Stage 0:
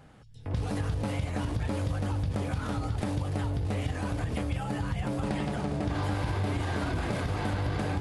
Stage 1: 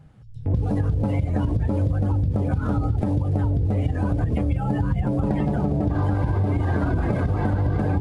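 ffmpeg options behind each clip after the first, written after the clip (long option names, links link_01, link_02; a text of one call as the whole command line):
ffmpeg -i in.wav -af "lowshelf=frequency=400:gain=5.5,afftdn=noise_reduction=14:noise_floor=-35,acompressor=threshold=-26dB:ratio=6,volume=8dB" out.wav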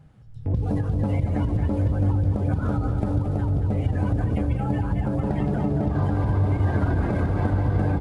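ffmpeg -i in.wav -af "aecho=1:1:226|452|678|904|1130|1356|1582|1808:0.422|0.253|0.152|0.0911|0.0547|0.0328|0.0197|0.0118,volume=-2dB" out.wav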